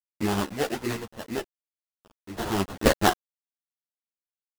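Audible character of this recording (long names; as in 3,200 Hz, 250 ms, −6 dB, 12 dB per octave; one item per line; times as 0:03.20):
a quantiser's noise floor 6 bits, dither none
sample-and-hold tremolo 2.1 Hz, depth 100%
aliases and images of a low sample rate 2,300 Hz, jitter 20%
a shimmering, thickened sound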